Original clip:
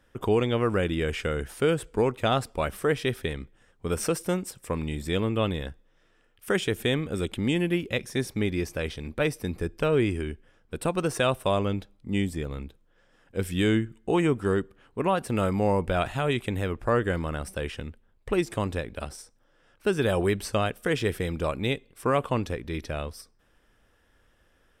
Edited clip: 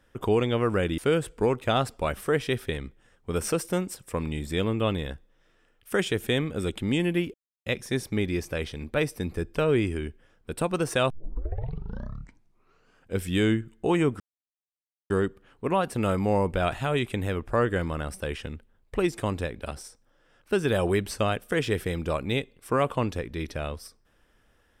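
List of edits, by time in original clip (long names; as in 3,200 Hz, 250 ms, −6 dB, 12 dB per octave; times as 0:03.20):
0:00.98–0:01.54: remove
0:07.90: splice in silence 0.32 s
0:11.34: tape start 2.03 s
0:14.44: splice in silence 0.90 s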